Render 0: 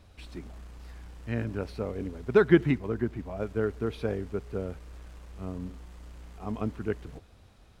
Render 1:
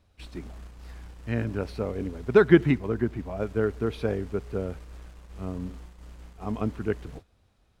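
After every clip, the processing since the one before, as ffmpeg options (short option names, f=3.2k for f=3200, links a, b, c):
-af "agate=range=-12dB:threshold=-45dB:ratio=16:detection=peak,volume=3dB"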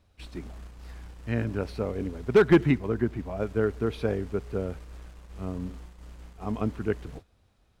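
-af "asoftclip=type=hard:threshold=-11dB"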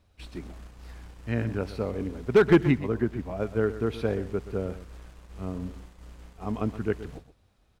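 -af "aecho=1:1:124:0.2"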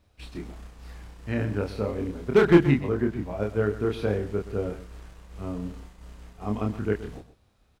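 -filter_complex "[0:a]asplit=2[a][b];[b]adelay=29,volume=-3.5dB[c];[a][c]amix=inputs=2:normalize=0"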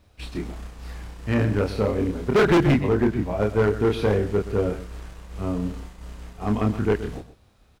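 -af "asoftclip=type=hard:threshold=-20.5dB,volume=6.5dB"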